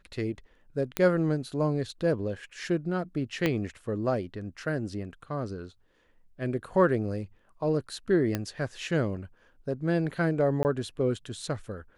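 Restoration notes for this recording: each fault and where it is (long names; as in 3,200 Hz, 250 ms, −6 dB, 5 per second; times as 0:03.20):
0:00.97: click −12 dBFS
0:03.46: click −13 dBFS
0:08.35: click −14 dBFS
0:10.63–0:10.65: drop-out 19 ms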